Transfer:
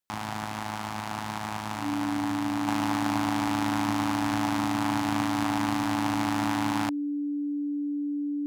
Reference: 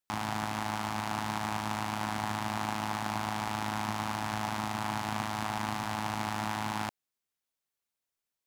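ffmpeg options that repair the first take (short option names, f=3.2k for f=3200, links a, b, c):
-af "bandreject=f=290:w=30,asetnsamples=n=441:p=0,asendcmd='2.67 volume volume -4dB',volume=0dB"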